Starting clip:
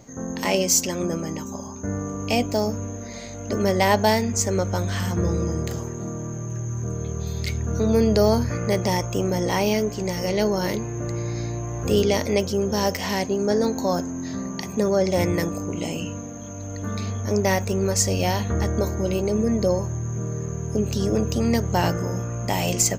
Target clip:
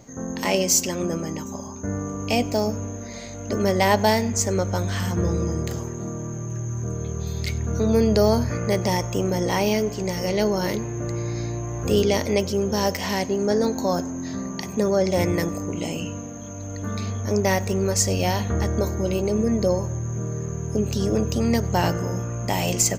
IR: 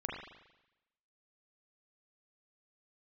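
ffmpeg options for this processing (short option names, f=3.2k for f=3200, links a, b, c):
-filter_complex "[0:a]asplit=2[a][b];[1:a]atrim=start_sample=2205,adelay=95[c];[b][c]afir=irnorm=-1:irlink=0,volume=-23.5dB[d];[a][d]amix=inputs=2:normalize=0"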